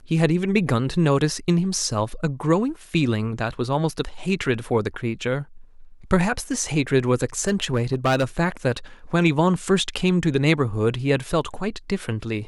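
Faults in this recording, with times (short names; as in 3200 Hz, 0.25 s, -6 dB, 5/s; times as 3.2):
7.39–8.24 clipped -15 dBFS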